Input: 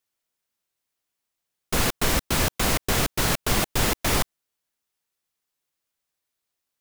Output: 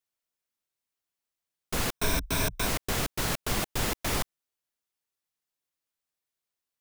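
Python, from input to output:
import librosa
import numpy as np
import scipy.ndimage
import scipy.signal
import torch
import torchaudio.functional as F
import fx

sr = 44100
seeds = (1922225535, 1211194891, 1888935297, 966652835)

y = fx.ripple_eq(x, sr, per_octave=1.6, db=10, at=(1.96, 2.67))
y = F.gain(torch.from_numpy(y), -6.5).numpy()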